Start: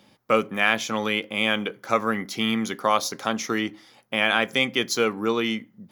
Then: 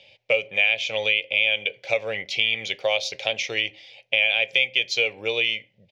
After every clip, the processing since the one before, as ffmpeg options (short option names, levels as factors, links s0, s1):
-af "firequalizer=gain_entry='entry(100,0);entry(230,-21);entry(550,7);entry(1200,-21);entry(2400,15);entry(4300,4);entry(11000,-22)':delay=0.05:min_phase=1,acompressor=threshold=0.112:ratio=3"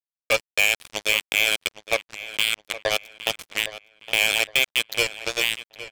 -filter_complex "[0:a]aeval=exprs='val(0)+0.00398*(sin(2*PI*60*n/s)+sin(2*PI*2*60*n/s)/2+sin(2*PI*3*60*n/s)/3+sin(2*PI*4*60*n/s)/4+sin(2*PI*5*60*n/s)/5)':c=same,acrusher=bits=2:mix=0:aa=0.5,asplit=2[s0][s1];[s1]adelay=813,lowpass=f=3900:p=1,volume=0.2,asplit=2[s2][s3];[s3]adelay=813,lowpass=f=3900:p=1,volume=0.35,asplit=2[s4][s5];[s5]adelay=813,lowpass=f=3900:p=1,volume=0.35[s6];[s0][s2][s4][s6]amix=inputs=4:normalize=0"